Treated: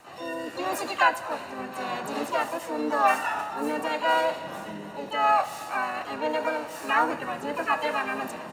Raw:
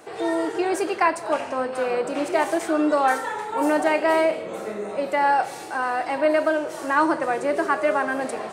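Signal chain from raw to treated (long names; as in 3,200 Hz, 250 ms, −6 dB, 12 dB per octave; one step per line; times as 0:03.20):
rotating-speaker cabinet horn 0.85 Hz
comb filter 1.1 ms, depth 93%
dynamic equaliser 330 Hz, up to −4 dB, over −44 dBFS, Q 7
on a send at −15 dB: convolution reverb RT60 4.5 s, pre-delay 55 ms
on the sum: pitch-shifted copies added −4 semitones −7 dB, +7 semitones −3 dB
level −6 dB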